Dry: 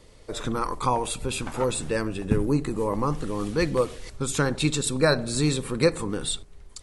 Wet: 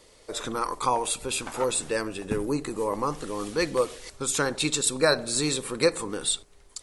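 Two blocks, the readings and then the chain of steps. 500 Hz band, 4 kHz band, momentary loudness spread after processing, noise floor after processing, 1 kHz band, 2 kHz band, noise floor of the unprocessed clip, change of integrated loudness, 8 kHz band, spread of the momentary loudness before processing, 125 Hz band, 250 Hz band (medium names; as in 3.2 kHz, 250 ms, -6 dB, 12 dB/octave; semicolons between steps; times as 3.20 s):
-1.0 dB, +2.0 dB, 7 LU, -56 dBFS, 0.0 dB, 0.0 dB, -49 dBFS, -1.0 dB, +4.0 dB, 8 LU, -10.0 dB, -4.5 dB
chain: tone controls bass -11 dB, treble +4 dB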